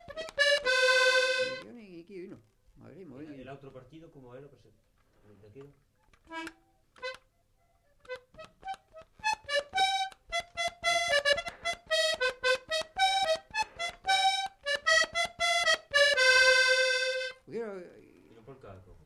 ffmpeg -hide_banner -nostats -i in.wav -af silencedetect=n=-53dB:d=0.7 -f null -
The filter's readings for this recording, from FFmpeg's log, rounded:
silence_start: 7.18
silence_end: 8.05 | silence_duration: 0.87